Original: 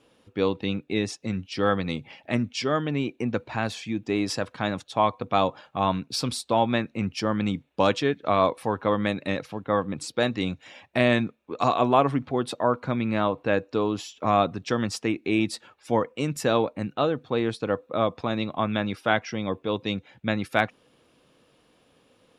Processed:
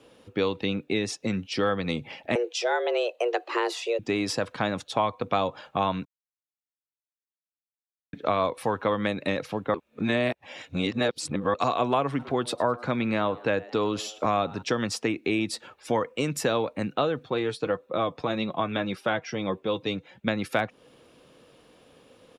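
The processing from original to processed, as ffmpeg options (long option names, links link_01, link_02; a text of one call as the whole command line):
ffmpeg -i in.wav -filter_complex "[0:a]asettb=1/sr,asplit=3[link_01][link_02][link_03];[link_01]atrim=end=2.354[link_04];[link_02]atrim=start=2.35:end=3.99,asetpts=PTS-STARTPTS,afade=type=in:duration=0.004:curve=qsin,afade=type=out:start_time=1.636:duration=0.004:curve=qsin,afreqshift=240[link_05];[link_03]atrim=start=3.986[link_06];[link_04][link_05]acrossfade=duration=0.004:curve1=hsin:curve2=qsin[link_07];[link_07][link_06]acrossfade=duration=0.004:curve1=qsin:curve2=hsin,asplit=3[link_08][link_09][link_10];[link_08]afade=type=out:start_time=12.18:duration=0.02[link_11];[link_09]asplit=4[link_12][link_13][link_14][link_15];[link_13]adelay=103,afreqshift=110,volume=-24dB[link_16];[link_14]adelay=206,afreqshift=220,volume=-30.9dB[link_17];[link_15]adelay=309,afreqshift=330,volume=-37.9dB[link_18];[link_12][link_16][link_17][link_18]amix=inputs=4:normalize=0,afade=type=in:start_time=12.18:duration=0.02,afade=type=out:start_time=14.61:duration=0.02[link_19];[link_10]afade=type=in:start_time=14.61:duration=0.02[link_20];[link_11][link_19][link_20]amix=inputs=3:normalize=0,asettb=1/sr,asplit=3[link_21][link_22][link_23];[link_21]atrim=end=17.264[link_24];[link_22]atrim=start=17.26:end=20.27,asetpts=PTS-STARTPTS,afade=type=in:duration=0.004:curve=qsin,afade=type=out:start_time=3.006:duration=0.004:curve=qsin,flanger=delay=4.9:depth=2.3:regen=41:speed=1.7:shape=triangular[link_25];[link_23]atrim=start=20.266[link_26];[link_24][link_25]acrossfade=duration=0.004:curve1=hsin:curve2=qsin[link_27];[link_27][link_26]acrossfade=duration=0.004:curve1=qsin:curve2=hsin,asplit=5[link_28][link_29][link_30][link_31][link_32];[link_28]atrim=end=6.05,asetpts=PTS-STARTPTS,afade=type=out:start_time=6.046:duration=0.004:curve=hsin[link_33];[link_29]atrim=start=6.05:end=8.13,asetpts=PTS-STARTPTS,volume=0[link_34];[link_30]atrim=start=8.13:end=9.742,asetpts=PTS-STARTPTS,afade=type=in:duration=0.004:curve=hsin[link_35];[link_31]atrim=start=9.738:end=11.542,asetpts=PTS-STARTPTS,areverse[link_36];[link_32]atrim=start=11.538[link_37];[link_33][link_34][link_35]concat=n=3:v=0:a=1[link_38];[link_38][link_36]acrossfade=duration=0.004:curve1=hsin:curve2=hsin[link_39];[link_39][link_37]acrossfade=duration=0.004:curve1=hsin:curve2=hsin,equalizer=frequency=490:width_type=o:width=0.77:gain=3.5,acrossover=split=140|1100[link_40][link_41][link_42];[link_40]acompressor=threshold=-46dB:ratio=4[link_43];[link_41]acompressor=threshold=-30dB:ratio=4[link_44];[link_42]acompressor=threshold=-34dB:ratio=4[link_45];[link_43][link_44][link_45]amix=inputs=3:normalize=0,volume=4.5dB" out.wav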